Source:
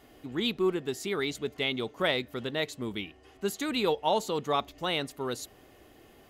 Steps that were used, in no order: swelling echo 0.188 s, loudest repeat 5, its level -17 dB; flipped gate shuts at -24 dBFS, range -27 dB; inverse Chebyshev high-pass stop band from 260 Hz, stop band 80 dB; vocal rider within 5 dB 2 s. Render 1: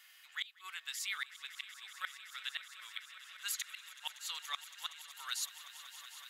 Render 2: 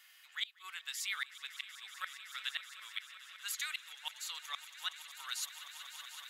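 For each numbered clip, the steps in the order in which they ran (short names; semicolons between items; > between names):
inverse Chebyshev high-pass > vocal rider > flipped gate > swelling echo; inverse Chebyshev high-pass > flipped gate > swelling echo > vocal rider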